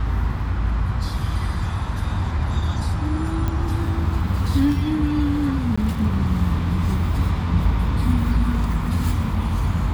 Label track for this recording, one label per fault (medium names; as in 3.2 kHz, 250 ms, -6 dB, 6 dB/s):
3.480000	3.480000	pop -13 dBFS
5.760000	5.780000	dropout 15 ms